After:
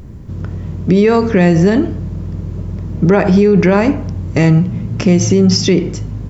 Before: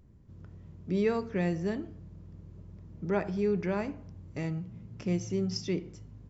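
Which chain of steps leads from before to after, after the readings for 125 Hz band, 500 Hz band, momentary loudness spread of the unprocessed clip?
+22.5 dB, +19.0 dB, 20 LU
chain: maximiser +27 dB; gain -1.5 dB

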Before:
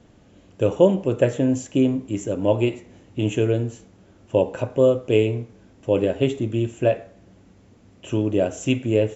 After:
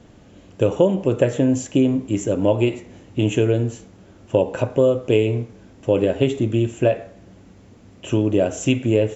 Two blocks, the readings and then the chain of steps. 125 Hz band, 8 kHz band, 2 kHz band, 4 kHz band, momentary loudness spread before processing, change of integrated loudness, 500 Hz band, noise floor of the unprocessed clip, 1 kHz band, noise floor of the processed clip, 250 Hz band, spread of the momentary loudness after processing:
+2.5 dB, n/a, +2.0 dB, +2.5 dB, 10 LU, +1.5 dB, +1.5 dB, -53 dBFS, +1.5 dB, -48 dBFS, +2.5 dB, 8 LU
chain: compressor 2.5:1, threshold -19 dBFS, peak gain reduction 7 dB; gain +5 dB

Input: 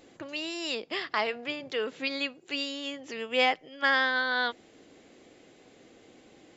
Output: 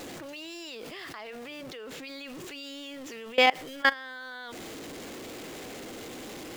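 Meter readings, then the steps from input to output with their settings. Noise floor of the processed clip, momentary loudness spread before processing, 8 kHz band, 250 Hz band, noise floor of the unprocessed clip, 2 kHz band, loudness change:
-42 dBFS, 11 LU, n/a, -1.5 dB, -58 dBFS, -2.5 dB, -3.0 dB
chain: zero-crossing step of -39.5 dBFS; level quantiser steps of 23 dB; gain +4.5 dB

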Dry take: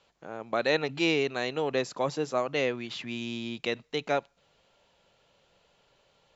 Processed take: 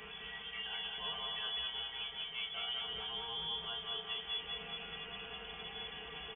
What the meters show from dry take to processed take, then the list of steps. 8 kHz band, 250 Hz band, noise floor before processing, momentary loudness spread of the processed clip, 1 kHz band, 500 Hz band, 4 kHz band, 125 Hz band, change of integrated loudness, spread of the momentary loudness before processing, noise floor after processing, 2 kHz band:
n/a, -25.0 dB, -68 dBFS, 7 LU, -11.5 dB, -22.5 dB, +2.0 dB, -17.0 dB, -9.5 dB, 9 LU, -49 dBFS, -10.5 dB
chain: delta modulation 64 kbps, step -31 dBFS; dynamic EQ 780 Hz, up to -6 dB, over -42 dBFS, Q 1.2; in parallel at -2.5 dB: limiter -22 dBFS, peak gain reduction 9 dB; on the sum: soft clip -20.5 dBFS, distortion -14 dB; resonator bank B3 minor, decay 0.25 s; on a send: feedback echo 0.201 s, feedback 59%, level -3.5 dB; on the sum: inverted band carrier 3400 Hz; gain +2 dB

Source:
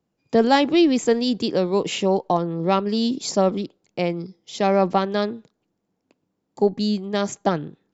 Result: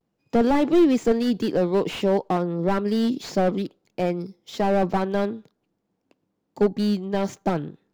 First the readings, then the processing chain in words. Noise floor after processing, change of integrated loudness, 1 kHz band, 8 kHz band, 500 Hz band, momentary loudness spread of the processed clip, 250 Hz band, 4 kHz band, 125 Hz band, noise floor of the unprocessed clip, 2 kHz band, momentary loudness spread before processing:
-76 dBFS, -1.5 dB, -4.0 dB, n/a, -1.5 dB, 10 LU, -0.5 dB, -7.5 dB, -0.5 dB, -76 dBFS, -4.0 dB, 10 LU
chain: median filter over 5 samples; vibrato 0.52 Hz 47 cents; slew limiter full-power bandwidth 85 Hz

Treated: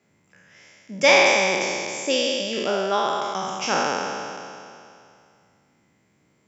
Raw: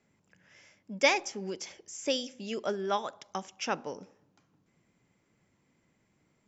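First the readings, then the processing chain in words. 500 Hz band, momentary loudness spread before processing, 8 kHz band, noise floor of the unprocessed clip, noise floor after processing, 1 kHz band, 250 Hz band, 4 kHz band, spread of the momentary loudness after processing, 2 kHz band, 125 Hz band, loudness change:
+11.5 dB, 16 LU, n/a, -73 dBFS, -64 dBFS, +12.0 dB, +8.5 dB, +12.0 dB, 18 LU, +13.0 dB, +8.0 dB, +11.5 dB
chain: spectral trails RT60 2.47 s; HPF 72 Hz; gain +4 dB

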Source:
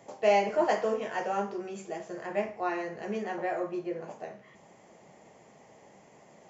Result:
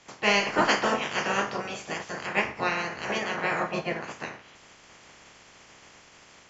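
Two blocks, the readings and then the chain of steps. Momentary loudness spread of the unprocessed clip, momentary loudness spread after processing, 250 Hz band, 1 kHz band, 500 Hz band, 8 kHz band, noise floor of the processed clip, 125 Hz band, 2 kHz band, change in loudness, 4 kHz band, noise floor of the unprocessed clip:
14 LU, 11 LU, +2.5 dB, +3.0 dB, -1.5 dB, n/a, -54 dBFS, +7.5 dB, +11.5 dB, +4.0 dB, +14.5 dB, -57 dBFS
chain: spectral limiter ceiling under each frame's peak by 25 dB; LPF 5900 Hz 12 dB/oct; AGC gain up to 4.5 dB

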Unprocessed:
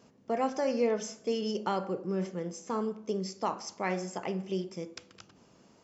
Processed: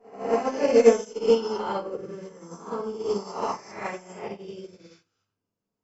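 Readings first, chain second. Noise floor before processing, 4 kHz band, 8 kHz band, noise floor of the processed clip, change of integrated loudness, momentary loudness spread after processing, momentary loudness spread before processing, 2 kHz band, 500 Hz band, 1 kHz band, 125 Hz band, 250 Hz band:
-62 dBFS, +2.5 dB, n/a, -85 dBFS, +8.5 dB, 22 LU, 7 LU, +4.0 dB, +9.0 dB, +3.5 dB, -4.5 dB, +2.0 dB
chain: spectral swells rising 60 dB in 1.42 s; shoebox room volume 43 m³, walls mixed, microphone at 1.9 m; upward expander 2.5:1, over -36 dBFS

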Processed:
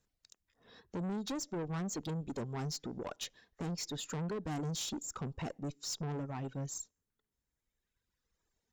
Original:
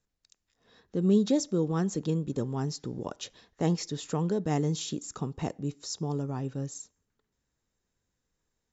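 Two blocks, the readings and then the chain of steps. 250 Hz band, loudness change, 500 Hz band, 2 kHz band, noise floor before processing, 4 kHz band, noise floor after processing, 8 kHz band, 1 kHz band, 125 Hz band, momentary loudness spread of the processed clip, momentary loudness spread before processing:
-10.5 dB, -9.0 dB, -11.0 dB, -2.5 dB, -83 dBFS, -2.5 dB, under -85 dBFS, n/a, -6.0 dB, -8.5 dB, 6 LU, 12 LU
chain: reverb removal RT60 1.9 s; compressor 12:1, threshold -28 dBFS, peak gain reduction 10 dB; tube stage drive 37 dB, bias 0.2; gain +2.5 dB

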